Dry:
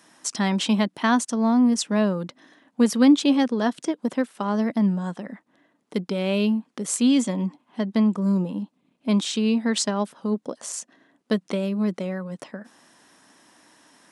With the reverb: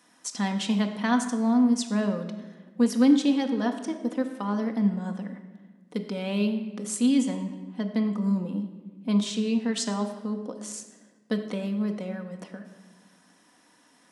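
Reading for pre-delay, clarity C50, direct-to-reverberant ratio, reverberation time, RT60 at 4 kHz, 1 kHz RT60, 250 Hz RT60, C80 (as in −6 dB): 4 ms, 9.0 dB, 4.0 dB, 1.3 s, 1.0 s, 1.2 s, 1.8 s, 10.5 dB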